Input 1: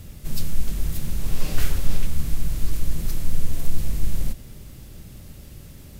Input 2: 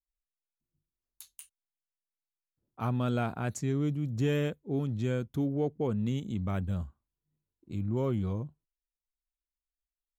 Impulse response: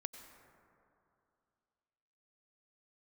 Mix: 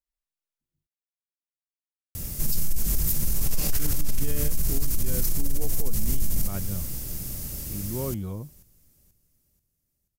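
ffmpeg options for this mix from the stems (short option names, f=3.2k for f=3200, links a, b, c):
-filter_complex "[0:a]acontrast=77,aexciter=amount=3.5:drive=4.8:freq=5k,adelay=2150,volume=-2.5dB,asplit=2[a][b];[b]volume=-20dB[c];[1:a]volume=-1dB,asplit=3[d][e][f];[d]atrim=end=0.87,asetpts=PTS-STARTPTS,afade=t=out:st=0.866:d=0.004:c=hsin[g];[e]atrim=start=0.87:end=3.79,asetpts=PTS-STARTPTS,volume=0[h];[f]atrim=start=3.79,asetpts=PTS-STARTPTS,afade=t=in:d=0.004:c=hsin[i];[g][h][i]concat=n=3:v=0:a=1[j];[c]aecho=0:1:484|968|1452|1936|2420|2904:1|0.41|0.168|0.0689|0.0283|0.0116[k];[a][j][k]amix=inputs=3:normalize=0,alimiter=limit=-14dB:level=0:latency=1:release=93"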